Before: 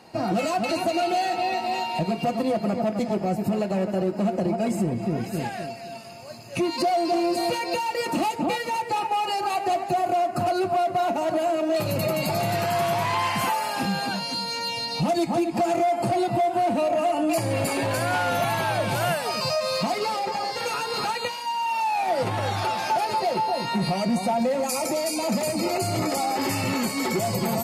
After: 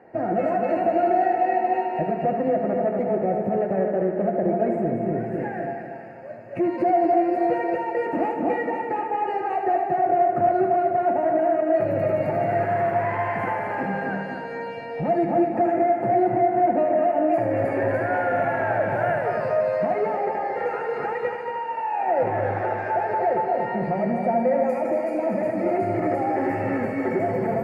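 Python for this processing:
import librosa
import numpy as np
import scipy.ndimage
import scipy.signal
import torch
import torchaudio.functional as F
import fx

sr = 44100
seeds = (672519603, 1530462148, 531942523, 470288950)

p1 = fx.curve_eq(x, sr, hz=(210.0, 440.0, 730.0, 1100.0, 1800.0, 3600.0), db=(0, 9, 6, -5, 8, -27))
p2 = p1 + fx.echo_heads(p1, sr, ms=77, heads='first and third', feedback_pct=61, wet_db=-8, dry=0)
y = p2 * 10.0 ** (-4.5 / 20.0)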